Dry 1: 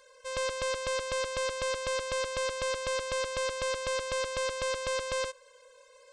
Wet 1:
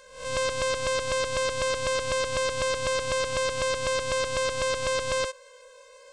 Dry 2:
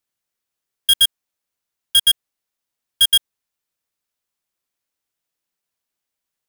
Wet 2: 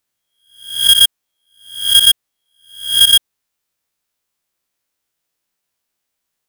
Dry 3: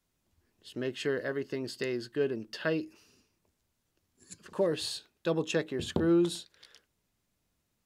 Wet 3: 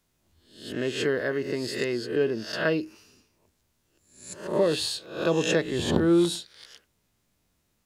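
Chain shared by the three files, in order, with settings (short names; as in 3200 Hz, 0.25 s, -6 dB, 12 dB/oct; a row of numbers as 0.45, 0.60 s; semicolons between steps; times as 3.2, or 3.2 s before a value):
spectral swells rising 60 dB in 0.53 s; gain +4.5 dB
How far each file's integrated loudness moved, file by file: +5.0, +5.5, +6.0 LU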